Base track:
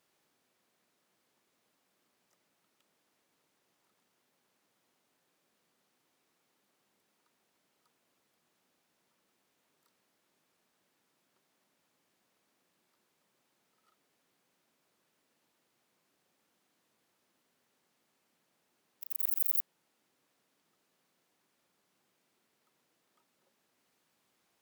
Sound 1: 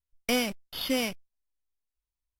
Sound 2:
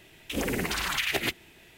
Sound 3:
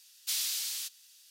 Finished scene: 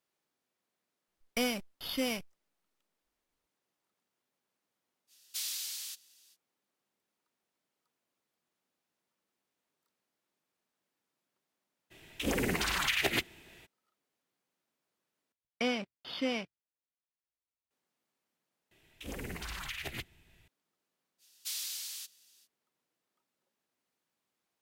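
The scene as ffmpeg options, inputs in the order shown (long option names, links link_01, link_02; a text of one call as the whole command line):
ffmpeg -i bed.wav -i cue0.wav -i cue1.wav -i cue2.wav -filter_complex "[1:a]asplit=2[link_01][link_02];[3:a]asplit=2[link_03][link_04];[2:a]asplit=2[link_05][link_06];[0:a]volume=-9.5dB[link_07];[link_05]equalizer=frequency=12000:width=2.3:gain=-2.5[link_08];[link_02]highpass=150,lowpass=3900[link_09];[link_06]asubboost=boost=8.5:cutoff=150[link_10];[link_07]asplit=3[link_11][link_12][link_13];[link_11]atrim=end=15.324[link_14];[link_09]atrim=end=2.39,asetpts=PTS-STARTPTS,volume=-4.5dB[link_15];[link_12]atrim=start=17.706:end=18.714[link_16];[link_10]atrim=end=1.77,asetpts=PTS-STARTPTS,volume=-12.5dB[link_17];[link_13]atrim=start=20.476[link_18];[link_01]atrim=end=2.39,asetpts=PTS-STARTPTS,volume=-5dB,afade=type=in:duration=0.004:curve=hsin,afade=type=out:start_time=2.386:duration=0.004:curve=hsin,adelay=1080[link_19];[link_03]atrim=end=1.3,asetpts=PTS-STARTPTS,volume=-5dB,afade=type=in:duration=0.05,afade=type=out:start_time=1.25:duration=0.05,adelay=5070[link_20];[link_08]atrim=end=1.77,asetpts=PTS-STARTPTS,volume=-2dB,afade=type=in:duration=0.02,afade=type=out:start_time=1.75:duration=0.02,adelay=11900[link_21];[link_04]atrim=end=1.3,asetpts=PTS-STARTPTS,volume=-6dB,afade=type=in:duration=0.05,afade=type=out:start_time=1.25:duration=0.05,adelay=21180[link_22];[link_14][link_15]acrossfade=duration=0.004:curve1=hsin:curve2=hsin[link_23];[link_23][link_16]acrossfade=duration=0.004:curve1=hsin:curve2=hsin[link_24];[link_24][link_17]acrossfade=duration=0.004:curve1=hsin:curve2=hsin[link_25];[link_25][link_18]acrossfade=duration=0.004:curve1=hsin:curve2=hsin[link_26];[link_26][link_19][link_20][link_21][link_22]amix=inputs=5:normalize=0" out.wav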